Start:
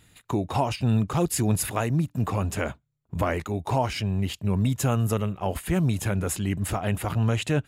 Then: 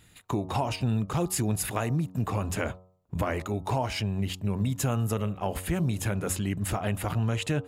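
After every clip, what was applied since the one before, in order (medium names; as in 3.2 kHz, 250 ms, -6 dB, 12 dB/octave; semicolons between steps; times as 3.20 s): de-hum 92.55 Hz, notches 14; compression 2.5:1, threshold -25 dBFS, peak gain reduction 5.5 dB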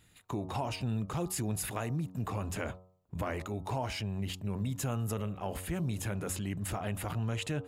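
transient shaper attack -1 dB, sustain +4 dB; trim -6.5 dB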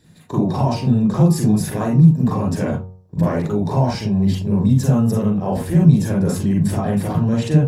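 reverberation RT60 0.20 s, pre-delay 37 ms, DRR -3.5 dB; trim -1 dB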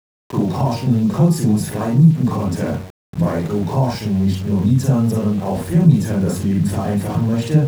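small samples zeroed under -32 dBFS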